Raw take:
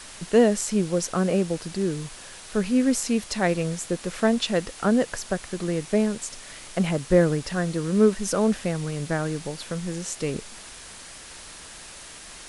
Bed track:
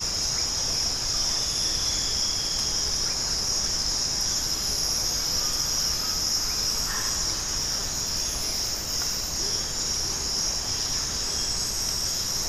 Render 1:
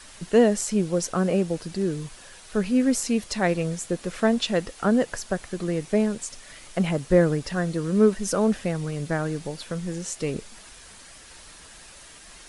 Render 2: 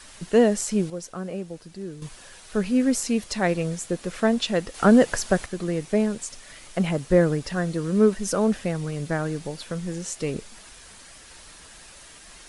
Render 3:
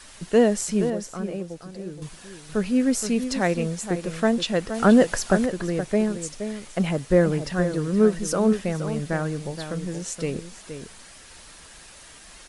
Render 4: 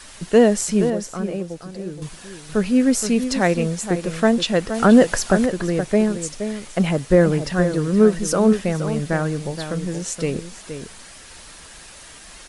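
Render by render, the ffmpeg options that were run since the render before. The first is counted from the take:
-af "afftdn=nr=6:nf=-43"
-filter_complex "[0:a]asettb=1/sr,asplit=3[s0][s1][s2];[s0]atrim=end=4.744[s3];[s1]atrim=start=4.74:end=5.46,asetpts=PTS-STARTPTS,afade=t=in:d=0.004:c=qsin,afade=t=out:st=0.716:d=0.004:c=qsin,acontrast=56[s4];[s2]atrim=start=5.456[s5];[s3][s4]acrossfade=d=0.004:c1=hsin:c2=qsin[s6];[s6][s5]acrossfade=d=0.004:c1=qsin:c2=hsin,asplit=3[s7][s8][s9];[s7]atrim=end=0.902[s10];[s8]atrim=start=0.898:end=2.022,asetpts=PTS-STARTPTS,volume=0.335[s11];[s9]atrim=start=2.018[s12];[s10][s11]acrossfade=d=0.004:c1=hsin:c2=hsin[s13];[s13][s12]acrossfade=d=0.004:c1=hsin:c2=hsin"
-filter_complex "[0:a]asplit=2[s0][s1];[s1]adelay=472.3,volume=0.355,highshelf=f=4000:g=-10.6[s2];[s0][s2]amix=inputs=2:normalize=0"
-af "volume=1.68,alimiter=limit=0.708:level=0:latency=1"

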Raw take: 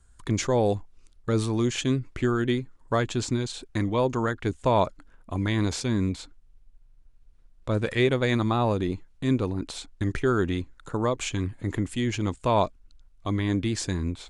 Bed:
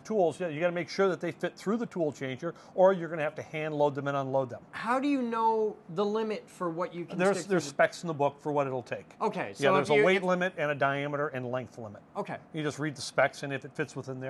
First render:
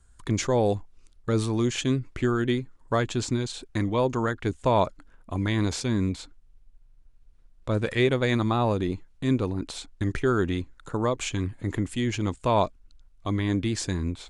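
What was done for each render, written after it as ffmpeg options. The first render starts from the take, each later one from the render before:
-af anull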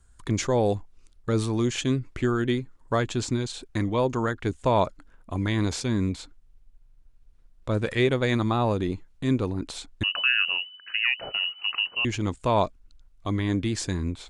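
-filter_complex "[0:a]asettb=1/sr,asplit=3[s0][s1][s2];[s0]atrim=end=10.034[s3];[s1]atrim=start=10.03:end=12.05,asetpts=PTS-STARTPTS,afade=t=in:d=0.004:c=qsin,afade=t=out:st=2.016:d=0.004:c=qsin,lowpass=f=2600:t=q:w=0.5098,lowpass=f=2600:t=q:w=0.6013,lowpass=f=2600:t=q:w=0.9,lowpass=f=2600:t=q:w=2.563,afreqshift=-3000[s4];[s2]atrim=start=12.046[s5];[s3][s4]acrossfade=d=0.004:c1=hsin:c2=qsin[s6];[s6][s5]acrossfade=d=0.004:c1=qsin:c2=hsin"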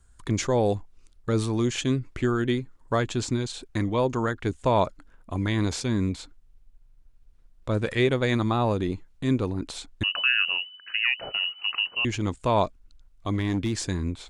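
-filter_complex "[0:a]asettb=1/sr,asplit=3[s0][s1][s2];[s0]atrim=end=13.334[s3];[s1]atrim=start=13.33:end=13.85,asetpts=PTS-STARTPTS,afade=t=in:d=0.004:c=qsin,afade=t=out:st=0.516:d=0.004:c=qsin,asoftclip=type=hard:threshold=0.1[s4];[s2]atrim=start=13.846[s5];[s3][s4]acrossfade=d=0.004:c1=hsin:c2=qsin[s6];[s6][s5]acrossfade=d=0.004:c1=qsin:c2=hsin"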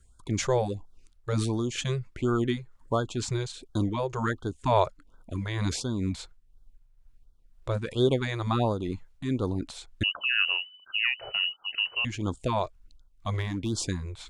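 -af "tremolo=f=2.1:d=0.48,afftfilt=real='re*(1-between(b*sr/1024,220*pow(2300/220,0.5+0.5*sin(2*PI*1.4*pts/sr))/1.41,220*pow(2300/220,0.5+0.5*sin(2*PI*1.4*pts/sr))*1.41))':imag='im*(1-between(b*sr/1024,220*pow(2300/220,0.5+0.5*sin(2*PI*1.4*pts/sr))/1.41,220*pow(2300/220,0.5+0.5*sin(2*PI*1.4*pts/sr))*1.41))':win_size=1024:overlap=0.75"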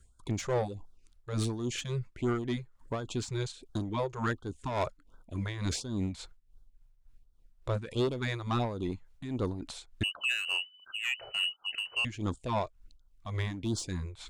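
-af "asoftclip=type=tanh:threshold=0.075,tremolo=f=3.5:d=0.6"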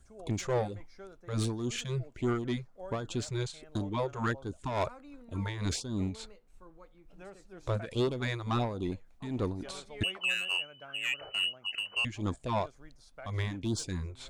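-filter_complex "[1:a]volume=0.0708[s0];[0:a][s0]amix=inputs=2:normalize=0"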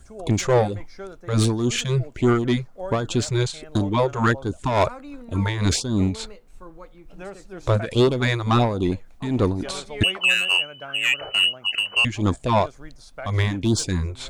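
-af "volume=3.98"

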